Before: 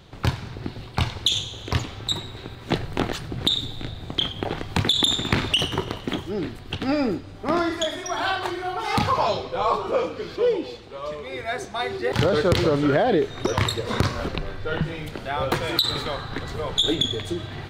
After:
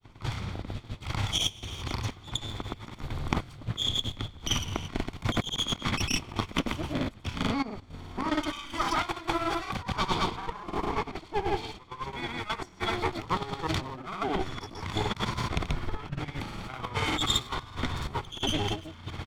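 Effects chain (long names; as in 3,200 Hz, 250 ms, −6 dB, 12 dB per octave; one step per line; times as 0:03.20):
lower of the sound and its delayed copy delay 0.82 ms
compressor whose output falls as the input rises −25 dBFS, ratio −0.5
gate pattern "x..xxxx..x.xxx." 176 BPM −12 dB
granular cloud, pitch spread up and down by 0 semitones
wrong playback speed 48 kHz file played as 44.1 kHz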